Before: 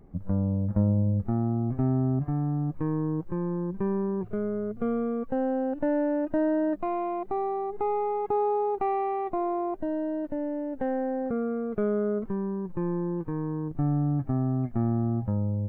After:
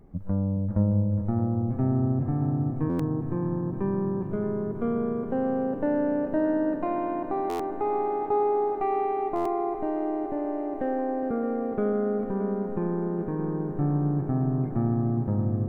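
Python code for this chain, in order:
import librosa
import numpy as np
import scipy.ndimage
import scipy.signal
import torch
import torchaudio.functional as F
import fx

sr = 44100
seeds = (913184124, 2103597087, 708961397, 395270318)

y = fx.echo_heads(x, sr, ms=207, heads='second and third', feedback_pct=73, wet_db=-12)
y = fx.buffer_glitch(y, sr, at_s=(2.89, 7.49, 9.35), block=512, repeats=8)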